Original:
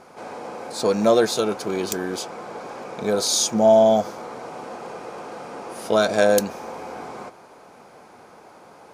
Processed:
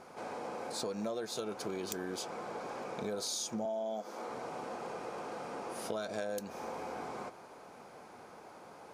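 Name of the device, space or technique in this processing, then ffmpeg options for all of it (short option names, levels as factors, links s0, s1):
serial compression, peaks first: -filter_complex "[0:a]asettb=1/sr,asplit=3[s0][s1][s2];[s0]atrim=end=3.654[s3];[s1]atrim=start=3.65:end=4.29,asetpts=PTS-STARTPTS,afade=t=in:d=0.004:c=qsin,afade=t=out:st=0.636:d=0.004:c=qsin,highpass=f=210:w=0.5412,highpass=f=210:w=1.3066[s4];[s2]atrim=start=4.286[s5];[s3][s4]acrossfade=d=0.004:c1=hsin:c2=qsin[s6];[s6][s5]acrossfade=d=0.004:c1=qsin:c2=hsin,acompressor=threshold=0.0501:ratio=6,acompressor=threshold=0.02:ratio=1.5,volume=0.531"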